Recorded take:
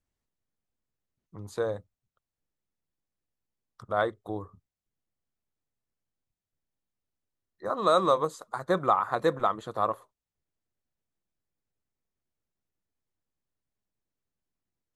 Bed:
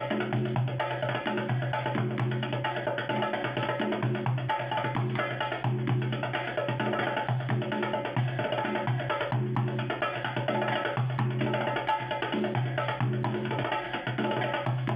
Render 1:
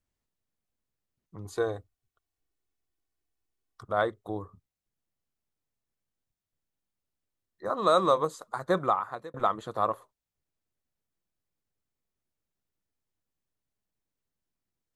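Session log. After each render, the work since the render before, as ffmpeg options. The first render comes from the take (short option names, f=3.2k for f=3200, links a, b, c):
-filter_complex "[0:a]asettb=1/sr,asplit=3[a][b][c];[a]atrim=end=1.454[d];[b]atrim=start=1.45:end=3.85,asetpts=PTS-STARTPTS,afade=t=in:d=0.004:c=qsin,afade=t=out:st=2.396:d=0.004:c=qsin,aecho=1:1:2.7:0.63,atrim=end_sample=105840[e];[c]atrim=start=3.846[f];[d][e]acrossfade=d=0.004:c1=hsin:c2=qsin[g];[g][f]acrossfade=d=0.004:c1=qsin:c2=hsin,asplit=2[h][i];[h]atrim=end=9.34,asetpts=PTS-STARTPTS,afade=t=out:st=8.79:d=0.55[j];[i]atrim=start=9.34,asetpts=PTS-STARTPTS,afade=t=in:d=0.004:c=hsin[k];[j][k]concat=n=2:v=0:a=1"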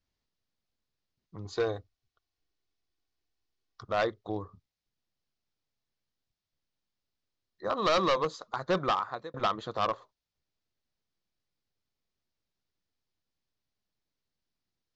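-af "aresample=16000,asoftclip=type=hard:threshold=-22dB,aresample=44100,lowpass=f=4.8k:t=q:w=2"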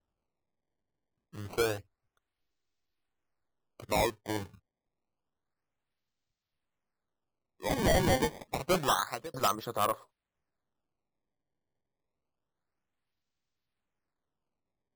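-af "acrusher=samples=19:mix=1:aa=0.000001:lfo=1:lforange=30.4:lforate=0.28"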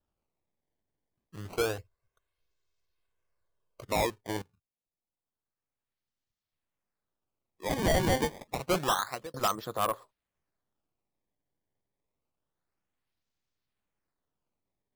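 -filter_complex "[0:a]asettb=1/sr,asplit=3[a][b][c];[a]atrim=end=1.784[d];[b]atrim=start=1.78:end=3.83,asetpts=PTS-STARTPTS,afade=t=in:d=0.004:c=qsin,afade=t=out:st=2.046:d=0.004:c=qsin,aecho=1:1:1.9:0.65,atrim=end_sample=90405[e];[c]atrim=start=3.826[f];[d][e]acrossfade=d=0.004:c1=hsin:c2=qsin[g];[g][f]acrossfade=d=0.004:c1=qsin:c2=hsin,asplit=2[h][i];[h]atrim=end=4.42,asetpts=PTS-STARTPTS,afade=t=out:st=4.416:d=0.004:c=hsin:silence=0.105925[j];[i]atrim=start=4.42,asetpts=PTS-STARTPTS,afade=t=in:d=3.32:silence=0.105925[k];[j][k]concat=n=2:v=0:a=1"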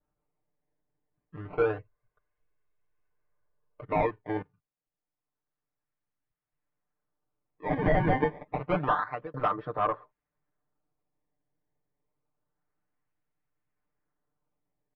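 -af "lowpass=f=2.1k:w=0.5412,lowpass=f=2.1k:w=1.3066,aecho=1:1:6.7:0.86"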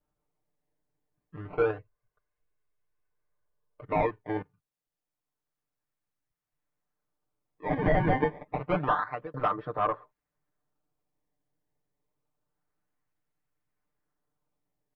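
-filter_complex "[0:a]asplit=3[a][b][c];[a]atrim=end=1.712[d];[b]atrim=start=1.708:end=3.842,asetpts=PTS-STARTPTS,volume=-3dB[e];[c]atrim=start=3.838[f];[d][e]acrossfade=d=0.004:c1=hsin:c2=hsin[g];[g][f]acrossfade=d=0.004:c1=hsin:c2=hsin"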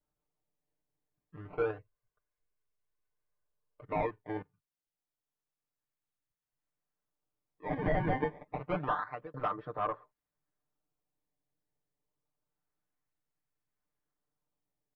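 -af "volume=-6dB"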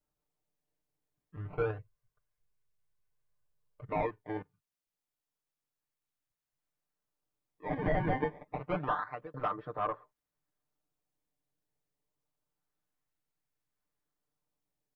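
-filter_complex "[0:a]asettb=1/sr,asplit=3[a][b][c];[a]atrim=end=1.364[d];[b]atrim=start=1.36:end=3.9,asetpts=PTS-STARTPTS,afade=t=in:d=0.004:c=qsin,afade=t=out:st=2.536:d=0.004:c=qsin,lowshelf=f=190:t=q:w=1.5:g=6.5[e];[c]atrim=start=3.896[f];[d][e]acrossfade=d=0.004:c1=hsin:c2=qsin[g];[g][f]acrossfade=d=0.004:c1=qsin:c2=hsin"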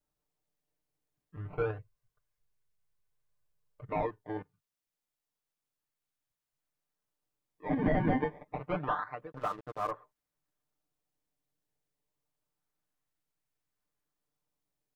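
-filter_complex "[0:a]asettb=1/sr,asplit=3[a][b][c];[a]atrim=end=3.994[d];[b]atrim=start=3.99:end=4.39,asetpts=PTS-STARTPTS,afade=t=in:d=0.004:c=qsin,afade=t=out:st=0.396:d=0.004:c=qsin,equalizer=f=2.3k:w=4.1:g=-9.5[e];[c]atrim=start=4.386[f];[d][e]acrossfade=d=0.004:c1=hsin:c2=qsin[g];[g][f]acrossfade=d=0.004:c1=qsin:c2=hsin,asettb=1/sr,asplit=3[h][i][j];[h]atrim=end=7.694[k];[i]atrim=start=7.69:end=8.2,asetpts=PTS-STARTPTS,afade=t=in:d=0.004:c=qsin,afade=t=out:st=0.506:d=0.004:c=qsin,equalizer=f=240:t=o:w=0.48:g=14[l];[j]atrim=start=8.196[m];[k][l]acrossfade=d=0.004:c1=hsin:c2=qsin[n];[n][m]acrossfade=d=0.004:c1=qsin:c2=hsin,asettb=1/sr,asplit=3[o][p][q];[o]atrim=end=9.324[r];[p]atrim=start=9.32:end=9.91,asetpts=PTS-STARTPTS,afade=t=in:d=0.004:c=qsin,afade=t=out:st=0.586:d=0.004:c=qsin,aeval=exprs='sgn(val(0))*max(abs(val(0))-0.00355,0)':c=same[s];[q]atrim=start=9.906[t];[r][s]acrossfade=d=0.004:c1=hsin:c2=qsin[u];[u][t]acrossfade=d=0.004:c1=qsin:c2=hsin"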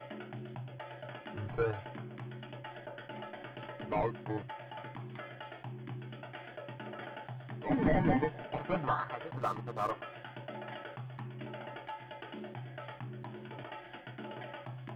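-filter_complex "[1:a]volume=-15.5dB[a];[0:a][a]amix=inputs=2:normalize=0"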